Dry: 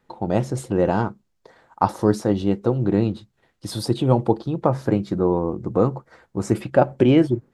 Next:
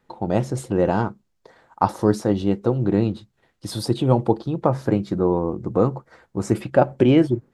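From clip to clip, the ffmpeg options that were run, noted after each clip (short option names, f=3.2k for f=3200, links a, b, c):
-af anull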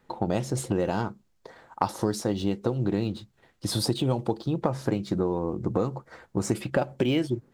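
-filter_complex "[0:a]acrossover=split=2700[a][b];[a]acompressor=threshold=-25dB:ratio=6[c];[b]acrusher=bits=5:mode=log:mix=0:aa=0.000001[d];[c][d]amix=inputs=2:normalize=0,volume=2.5dB"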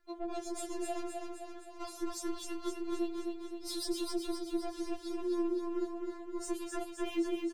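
-filter_complex "[0:a]asoftclip=type=tanh:threshold=-20.5dB,asplit=2[a][b];[b]aecho=0:1:259|518|777|1036|1295|1554|1813|2072:0.631|0.36|0.205|0.117|0.0666|0.038|0.0216|0.0123[c];[a][c]amix=inputs=2:normalize=0,afftfilt=real='re*4*eq(mod(b,16),0)':imag='im*4*eq(mod(b,16),0)':win_size=2048:overlap=0.75,volume=-5.5dB"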